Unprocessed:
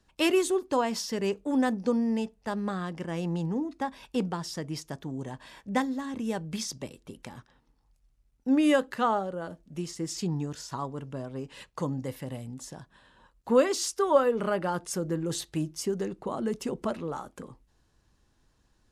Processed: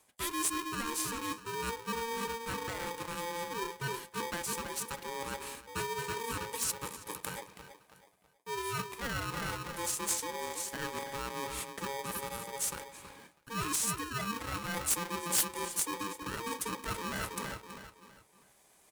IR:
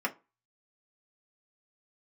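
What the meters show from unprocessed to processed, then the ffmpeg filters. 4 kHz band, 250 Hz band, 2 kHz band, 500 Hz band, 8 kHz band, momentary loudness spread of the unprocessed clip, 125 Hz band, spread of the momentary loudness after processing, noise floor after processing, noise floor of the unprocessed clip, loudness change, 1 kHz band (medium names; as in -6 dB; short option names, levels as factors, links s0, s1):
-1.0 dB, -13.5 dB, 0.0 dB, -12.0 dB, +5.0 dB, 17 LU, -8.5 dB, 10 LU, -65 dBFS, -69 dBFS, -5.5 dB, -3.5 dB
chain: -filter_complex "[0:a]lowpass=10000,asplit=2[s0][s1];[1:a]atrim=start_sample=2205,asetrate=29547,aresample=44100[s2];[s1][s2]afir=irnorm=-1:irlink=0,volume=0.119[s3];[s0][s3]amix=inputs=2:normalize=0,tremolo=f=0.53:d=0.6,acontrast=84,asplit=2[s4][s5];[s5]adelay=325,lowpass=f=2300:p=1,volume=0.299,asplit=2[s6][s7];[s7]adelay=325,lowpass=f=2300:p=1,volume=0.37,asplit=2[s8][s9];[s9]adelay=325,lowpass=f=2300:p=1,volume=0.37,asplit=2[s10][s11];[s11]adelay=325,lowpass=f=2300:p=1,volume=0.37[s12];[s4][s6][s8][s10][s12]amix=inputs=5:normalize=0,areverse,acompressor=threshold=0.0316:ratio=10,areverse,aexciter=amount=12.4:drive=3.4:freq=7800,aeval=exprs='(mod(6.31*val(0)+1,2)-1)/6.31':c=same,highpass=f=120:p=1,aeval=exprs='val(0)*sgn(sin(2*PI*690*n/s))':c=same,volume=0.668"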